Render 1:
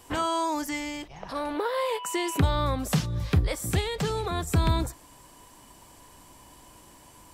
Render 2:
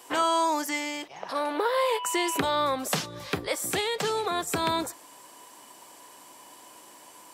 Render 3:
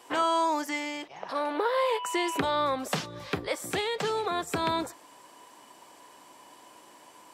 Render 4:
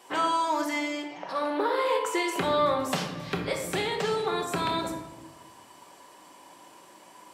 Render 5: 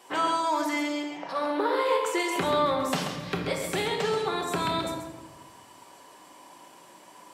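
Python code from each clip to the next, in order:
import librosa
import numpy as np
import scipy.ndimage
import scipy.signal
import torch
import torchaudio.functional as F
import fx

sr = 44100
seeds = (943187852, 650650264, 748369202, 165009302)

y1 = scipy.signal.sosfilt(scipy.signal.butter(2, 360.0, 'highpass', fs=sr, output='sos'), x)
y1 = y1 * librosa.db_to_amplitude(3.5)
y2 = fx.high_shelf(y1, sr, hz=6600.0, db=-10.5)
y2 = y2 * librosa.db_to_amplitude(-1.0)
y3 = fx.room_shoebox(y2, sr, seeds[0], volume_m3=480.0, walls='mixed', distance_m=1.1)
y3 = y3 * librosa.db_to_amplitude(-1.0)
y4 = y3 + 10.0 ** (-7.5 / 20.0) * np.pad(y3, (int(133 * sr / 1000.0), 0))[:len(y3)]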